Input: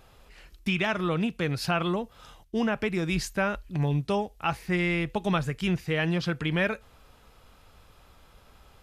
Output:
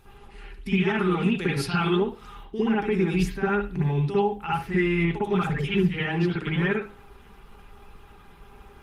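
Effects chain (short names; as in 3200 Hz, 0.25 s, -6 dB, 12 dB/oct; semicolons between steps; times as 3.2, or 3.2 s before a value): bin magnitudes rounded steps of 15 dB; small resonant body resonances 400/810 Hz, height 10 dB, ringing for 60 ms; 5.37–6.3 dispersion lows, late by 72 ms, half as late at 820 Hz; limiter -18.5 dBFS, peak gain reduction 7.5 dB; 0.99–1.9 high shelf 2700 Hz +8.5 dB; compressor 1.5:1, threshold -35 dBFS, peak gain reduction 4.5 dB; bell 600 Hz -14 dB 0.48 oct; 3.91–4.61 notch 7200 Hz, Q 20; de-hum 52.2 Hz, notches 5; reverb, pre-delay 54 ms, DRR -8 dB; Opus 32 kbps 48000 Hz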